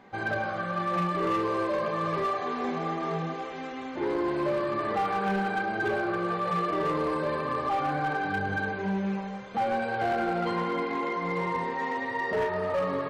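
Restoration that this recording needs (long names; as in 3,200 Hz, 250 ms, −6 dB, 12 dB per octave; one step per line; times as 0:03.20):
clipped peaks rebuilt −22.5 dBFS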